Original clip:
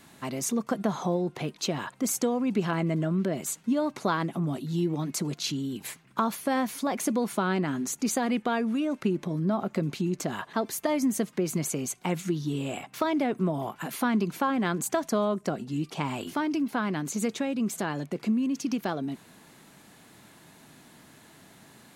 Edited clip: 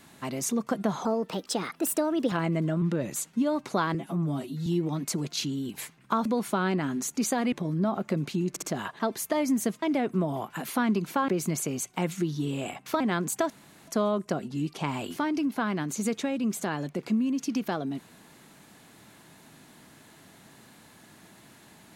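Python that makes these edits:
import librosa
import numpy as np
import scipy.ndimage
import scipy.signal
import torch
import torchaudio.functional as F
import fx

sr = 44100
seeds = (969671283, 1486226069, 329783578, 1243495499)

y = fx.edit(x, sr, fx.speed_span(start_s=1.05, length_s=1.61, speed=1.27),
    fx.speed_span(start_s=3.16, length_s=0.29, speed=0.89),
    fx.stretch_span(start_s=4.25, length_s=0.48, factor=1.5),
    fx.cut(start_s=6.32, length_s=0.78),
    fx.cut(start_s=8.37, length_s=0.81),
    fx.stutter(start_s=10.16, slice_s=0.06, count=3),
    fx.move(start_s=13.08, length_s=1.46, to_s=11.36),
    fx.insert_room_tone(at_s=15.04, length_s=0.37), tone=tone)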